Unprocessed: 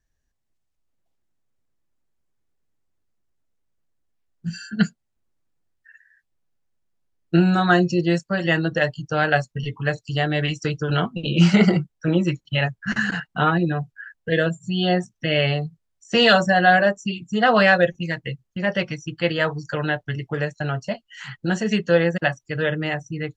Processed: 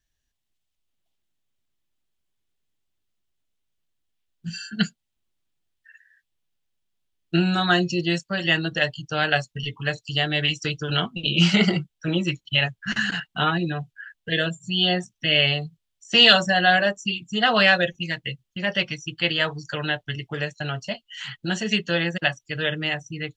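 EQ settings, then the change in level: peaking EQ 3.2 kHz +10.5 dB 1 oct; treble shelf 5.5 kHz +7.5 dB; band-stop 500 Hz, Q 12; -4.5 dB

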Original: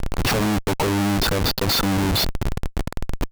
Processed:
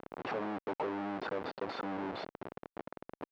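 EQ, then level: high-pass 410 Hz 12 dB/octave; tape spacing loss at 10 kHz 39 dB; treble shelf 3.5 kHz -8.5 dB; -8.0 dB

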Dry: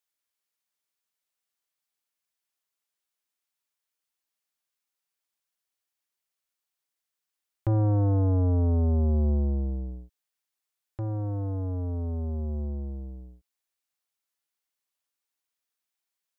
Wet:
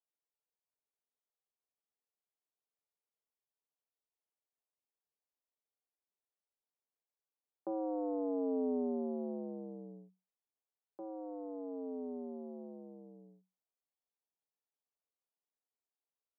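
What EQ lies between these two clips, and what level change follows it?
rippled Chebyshev high-pass 180 Hz, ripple 6 dB; low-pass 1.1 kHz 24 dB/octave; peaking EQ 430 Hz +10.5 dB 0.4 oct; -5.0 dB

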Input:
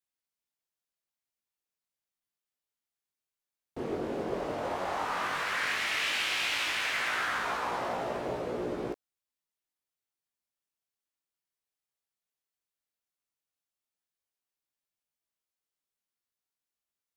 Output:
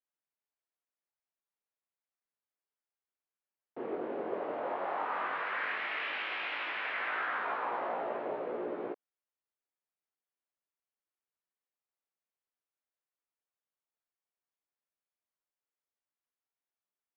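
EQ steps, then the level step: band-pass 350–2800 Hz; distance through air 340 m; 0.0 dB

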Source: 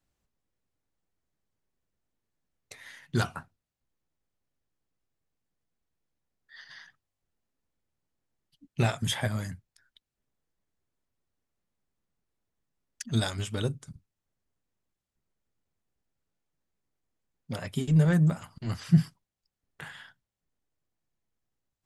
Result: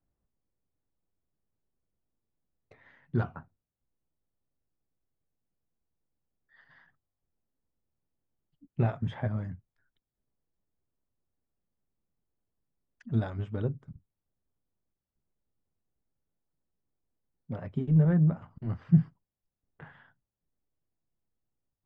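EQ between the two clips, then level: tape spacing loss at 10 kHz 33 dB; treble shelf 2.7 kHz -11.5 dB; peaking EQ 5 kHz -3.5 dB 2.2 oct; 0.0 dB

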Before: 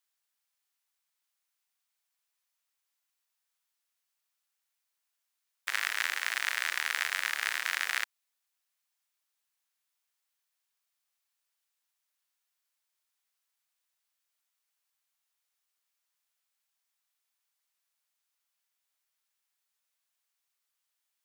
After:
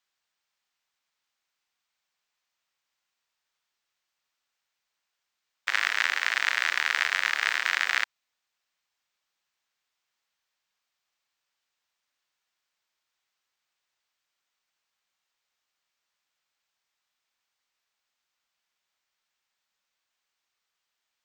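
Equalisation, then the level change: boxcar filter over 4 samples; +6.5 dB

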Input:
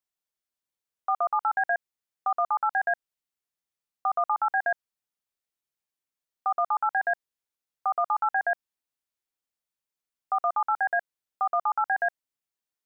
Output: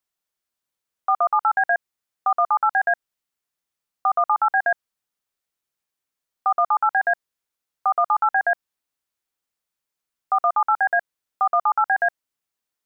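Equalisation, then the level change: peaking EQ 1.3 kHz +2 dB; +5.0 dB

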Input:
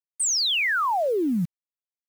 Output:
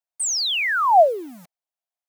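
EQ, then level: resonant high-pass 690 Hz, resonance Q 4.9; 0.0 dB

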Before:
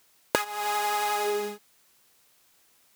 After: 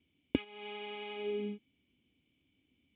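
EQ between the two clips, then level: cascade formant filter i; high-pass 50 Hz; peaking EQ 68 Hz +15 dB 1.8 oct; +7.0 dB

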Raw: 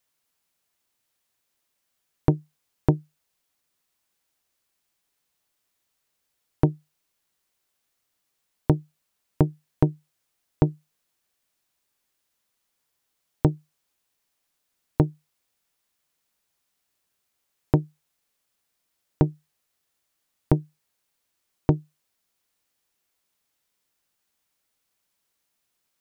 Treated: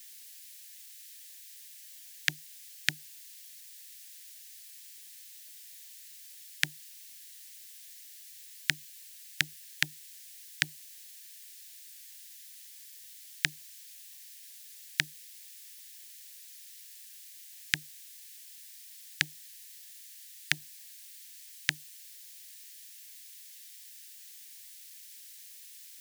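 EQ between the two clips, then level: elliptic high-pass 1.7 kHz, stop band 40 dB; treble shelf 2.4 kHz +12 dB; +16.5 dB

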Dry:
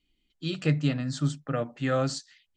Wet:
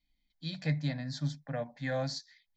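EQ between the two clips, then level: peaking EQ 93 Hz -13.5 dB 0.5 oct; static phaser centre 1.9 kHz, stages 8; -2.0 dB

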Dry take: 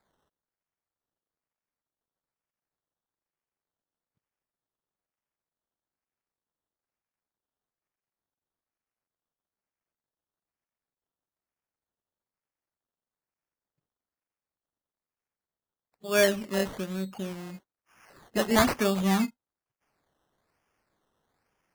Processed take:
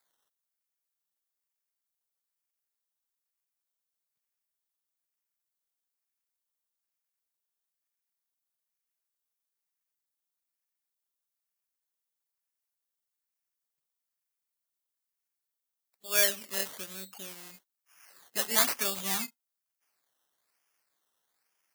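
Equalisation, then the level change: tilt EQ +4.5 dB/octave; -7.5 dB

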